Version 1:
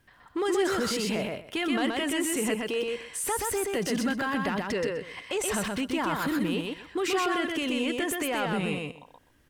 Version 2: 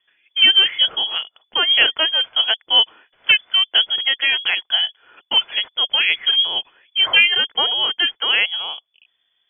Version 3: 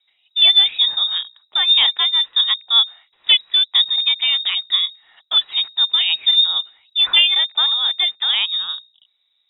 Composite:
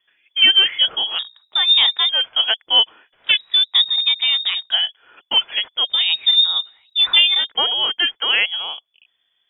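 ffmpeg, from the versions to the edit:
ffmpeg -i take0.wav -i take1.wav -i take2.wav -filter_complex "[2:a]asplit=3[link_01][link_02][link_03];[1:a]asplit=4[link_04][link_05][link_06][link_07];[link_04]atrim=end=1.192[link_08];[link_01]atrim=start=1.188:end=2.092[link_09];[link_05]atrim=start=2.088:end=3.45[link_10];[link_02]atrim=start=3.21:end=4.75[link_11];[link_06]atrim=start=4.51:end=6[link_12];[link_03]atrim=start=5.84:end=7.52[link_13];[link_07]atrim=start=7.36[link_14];[link_08][link_09]acrossfade=duration=0.004:curve1=hsin:curve2=hsin[link_15];[link_15][link_10]acrossfade=duration=0.004:curve1=hsin:curve2=hsin[link_16];[link_16][link_11]acrossfade=duration=0.24:curve1=tri:curve2=tri[link_17];[link_17][link_12]acrossfade=duration=0.24:curve1=tri:curve2=tri[link_18];[link_18][link_13]acrossfade=duration=0.16:curve1=tri:curve2=tri[link_19];[link_19][link_14]acrossfade=duration=0.16:curve1=tri:curve2=tri" out.wav

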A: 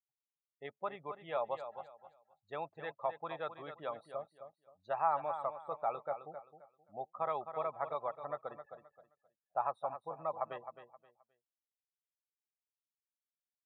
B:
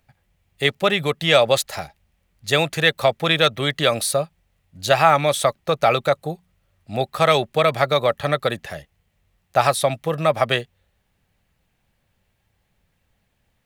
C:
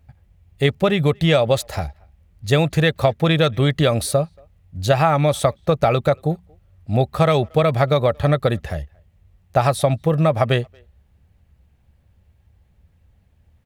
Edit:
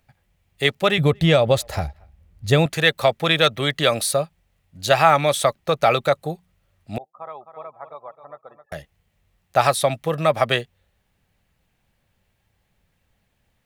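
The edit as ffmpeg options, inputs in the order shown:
ffmpeg -i take0.wav -i take1.wav -i take2.wav -filter_complex "[1:a]asplit=3[link_01][link_02][link_03];[link_01]atrim=end=0.982[link_04];[2:a]atrim=start=0.978:end=2.662[link_05];[link_02]atrim=start=2.658:end=6.982[link_06];[0:a]atrim=start=6.978:end=8.722[link_07];[link_03]atrim=start=8.718[link_08];[link_04][link_05]acrossfade=duration=0.004:curve1=hsin:curve2=hsin[link_09];[link_09][link_06]acrossfade=duration=0.004:curve1=hsin:curve2=hsin[link_10];[link_10][link_07]acrossfade=duration=0.004:curve1=hsin:curve2=hsin[link_11];[link_11][link_08]acrossfade=duration=0.004:curve1=hsin:curve2=hsin" out.wav

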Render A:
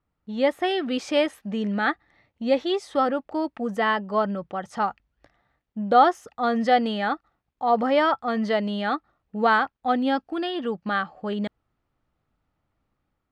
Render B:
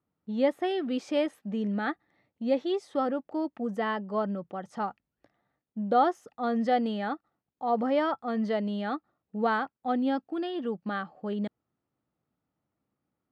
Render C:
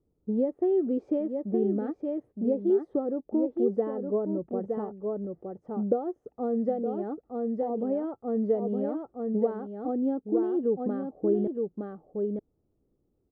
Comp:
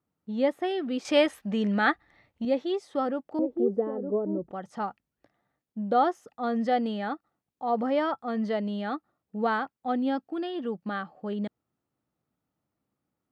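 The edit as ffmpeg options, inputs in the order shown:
ffmpeg -i take0.wav -i take1.wav -i take2.wav -filter_complex "[1:a]asplit=3[link_01][link_02][link_03];[link_01]atrim=end=1.052[link_04];[0:a]atrim=start=1.048:end=2.452[link_05];[link_02]atrim=start=2.448:end=3.392[link_06];[2:a]atrim=start=3.388:end=4.512[link_07];[link_03]atrim=start=4.508[link_08];[link_04][link_05]acrossfade=duration=0.004:curve1=hsin:curve2=hsin[link_09];[link_09][link_06]acrossfade=duration=0.004:curve1=hsin:curve2=hsin[link_10];[link_10][link_07]acrossfade=duration=0.004:curve1=hsin:curve2=hsin[link_11];[link_11][link_08]acrossfade=duration=0.004:curve1=hsin:curve2=hsin" out.wav

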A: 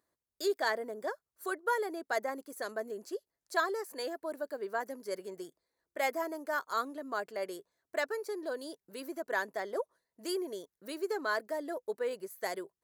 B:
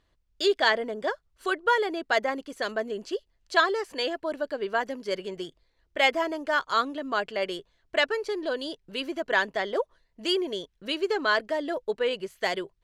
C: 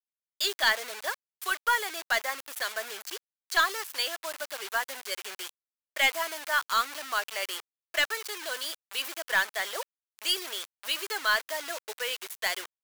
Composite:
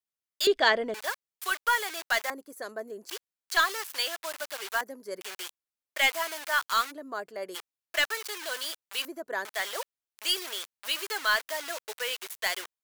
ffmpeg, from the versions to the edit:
ffmpeg -i take0.wav -i take1.wav -i take2.wav -filter_complex "[0:a]asplit=4[link_01][link_02][link_03][link_04];[2:a]asplit=6[link_05][link_06][link_07][link_08][link_09][link_10];[link_05]atrim=end=0.472[link_11];[1:a]atrim=start=0.468:end=0.942[link_12];[link_06]atrim=start=0.938:end=2.302[link_13];[link_01]atrim=start=2.298:end=3.092[link_14];[link_07]atrim=start=3.088:end=4.812[link_15];[link_02]atrim=start=4.808:end=5.212[link_16];[link_08]atrim=start=5.208:end=6.92[link_17];[link_03]atrim=start=6.9:end=7.56[link_18];[link_09]atrim=start=7.54:end=9.052[link_19];[link_04]atrim=start=9.048:end=9.452[link_20];[link_10]atrim=start=9.448[link_21];[link_11][link_12]acrossfade=duration=0.004:curve1=hsin:curve2=hsin[link_22];[link_22][link_13]acrossfade=duration=0.004:curve1=hsin:curve2=hsin[link_23];[link_23][link_14]acrossfade=duration=0.004:curve1=hsin:curve2=hsin[link_24];[link_24][link_15]acrossfade=duration=0.004:curve1=hsin:curve2=hsin[link_25];[link_25][link_16]acrossfade=duration=0.004:curve1=hsin:curve2=hsin[link_26];[link_26][link_17]acrossfade=duration=0.004:curve1=hsin:curve2=hsin[link_27];[link_27][link_18]acrossfade=duration=0.02:curve1=tri:curve2=tri[link_28];[link_28][link_19]acrossfade=duration=0.02:curve1=tri:curve2=tri[link_29];[link_29][link_20]acrossfade=duration=0.004:curve1=hsin:curve2=hsin[link_30];[link_30][link_21]acrossfade=duration=0.004:curve1=hsin:curve2=hsin" out.wav

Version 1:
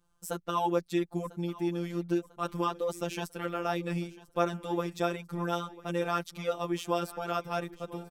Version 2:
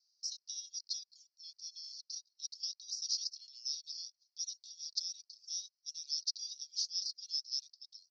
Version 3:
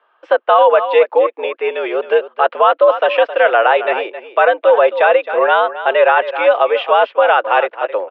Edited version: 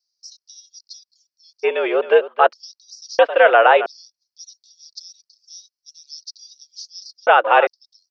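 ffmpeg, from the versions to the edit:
ffmpeg -i take0.wav -i take1.wav -i take2.wav -filter_complex "[2:a]asplit=3[link_01][link_02][link_03];[1:a]asplit=4[link_04][link_05][link_06][link_07];[link_04]atrim=end=1.65[link_08];[link_01]atrim=start=1.63:end=2.53[link_09];[link_05]atrim=start=2.51:end=3.192[link_10];[link_02]atrim=start=3.188:end=3.862[link_11];[link_06]atrim=start=3.858:end=7.272[link_12];[link_03]atrim=start=7.268:end=7.672[link_13];[link_07]atrim=start=7.668[link_14];[link_08][link_09]acrossfade=duration=0.02:curve1=tri:curve2=tri[link_15];[link_15][link_10]acrossfade=duration=0.02:curve1=tri:curve2=tri[link_16];[link_16][link_11]acrossfade=duration=0.004:curve1=hsin:curve2=hsin[link_17];[link_17][link_12]acrossfade=duration=0.004:curve1=hsin:curve2=hsin[link_18];[link_18][link_13]acrossfade=duration=0.004:curve1=hsin:curve2=hsin[link_19];[link_19][link_14]acrossfade=duration=0.004:curve1=hsin:curve2=hsin" out.wav

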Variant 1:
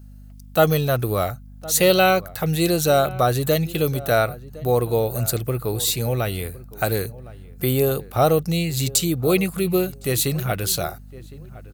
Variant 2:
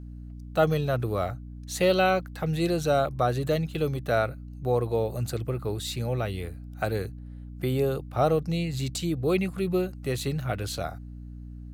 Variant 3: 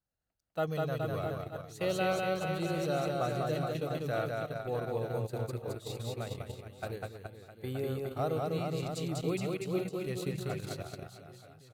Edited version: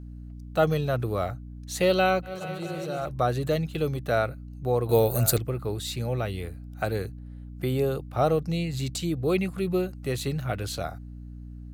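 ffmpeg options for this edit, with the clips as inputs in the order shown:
ffmpeg -i take0.wav -i take1.wav -i take2.wav -filter_complex "[1:a]asplit=3[link_01][link_02][link_03];[link_01]atrim=end=2.38[link_04];[2:a]atrim=start=2.22:end=3.12[link_05];[link_02]atrim=start=2.96:end=4.892[link_06];[0:a]atrim=start=4.888:end=5.382[link_07];[link_03]atrim=start=5.378[link_08];[link_04][link_05]acrossfade=duration=0.16:curve1=tri:curve2=tri[link_09];[link_09][link_06]acrossfade=duration=0.16:curve1=tri:curve2=tri[link_10];[link_10][link_07]acrossfade=duration=0.004:curve1=hsin:curve2=hsin[link_11];[link_11][link_08]acrossfade=duration=0.004:curve1=hsin:curve2=hsin" out.wav

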